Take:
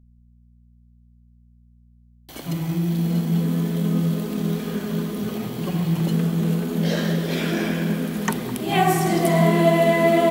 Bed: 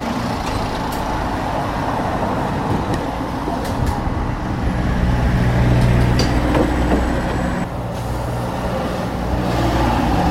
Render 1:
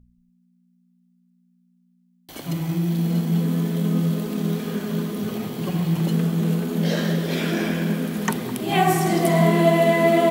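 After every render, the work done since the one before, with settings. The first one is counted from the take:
hum removal 60 Hz, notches 2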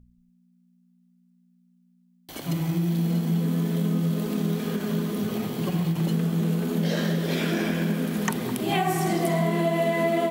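downward compressor 4 to 1, threshold −21 dBFS, peak gain reduction 8.5 dB
every ending faded ahead of time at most 170 dB per second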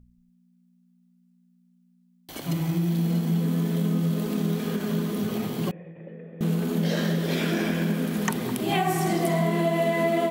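0:05.71–0:06.41: formant resonators in series e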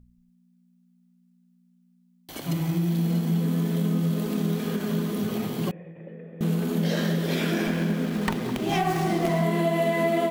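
0:07.67–0:09.43: windowed peak hold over 5 samples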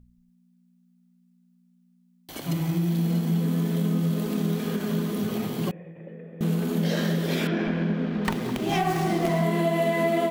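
0:07.47–0:08.25: high-frequency loss of the air 230 metres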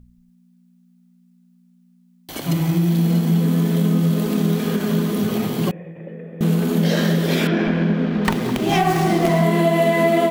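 level +7 dB

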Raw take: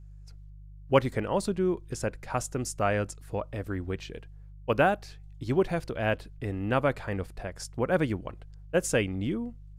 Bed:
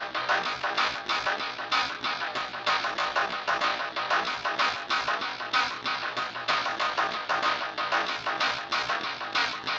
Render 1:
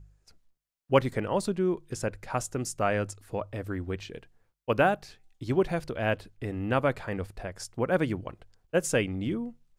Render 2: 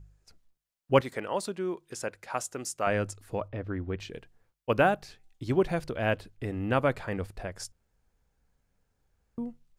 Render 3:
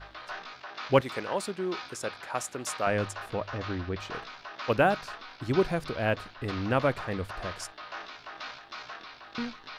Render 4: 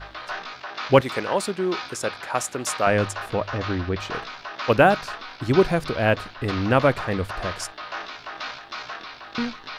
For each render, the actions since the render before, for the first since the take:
hum removal 50 Hz, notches 3
0:01.01–0:02.87: high-pass filter 530 Hz 6 dB per octave; 0:03.48–0:04.00: high-frequency loss of the air 240 metres; 0:07.72–0:09.38: fill with room tone
mix in bed −14 dB
level +7.5 dB; brickwall limiter −2 dBFS, peak gain reduction 1.5 dB

